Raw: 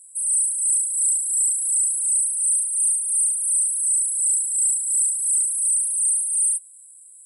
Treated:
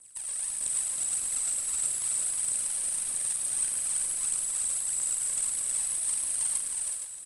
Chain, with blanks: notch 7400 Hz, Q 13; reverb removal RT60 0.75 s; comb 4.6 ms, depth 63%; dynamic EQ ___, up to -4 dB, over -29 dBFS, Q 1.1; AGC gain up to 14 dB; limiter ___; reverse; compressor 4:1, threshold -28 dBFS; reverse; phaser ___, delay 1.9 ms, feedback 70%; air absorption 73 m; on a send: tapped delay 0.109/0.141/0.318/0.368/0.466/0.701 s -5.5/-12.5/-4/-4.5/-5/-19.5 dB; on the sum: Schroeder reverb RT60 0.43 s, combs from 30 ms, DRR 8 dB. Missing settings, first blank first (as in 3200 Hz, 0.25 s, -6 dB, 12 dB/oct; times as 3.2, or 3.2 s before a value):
8200 Hz, -8.5 dBFS, 1.6 Hz